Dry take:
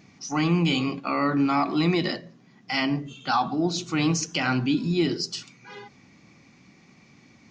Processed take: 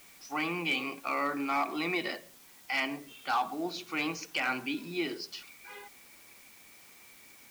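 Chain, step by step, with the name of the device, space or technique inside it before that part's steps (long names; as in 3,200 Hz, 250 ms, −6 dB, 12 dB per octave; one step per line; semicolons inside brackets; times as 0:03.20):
drive-through speaker (band-pass filter 420–3,700 Hz; parametric band 2,300 Hz +8 dB 0.24 octaves; hard clipping −17.5 dBFS, distortion −22 dB; white noise bed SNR 21 dB)
level −5 dB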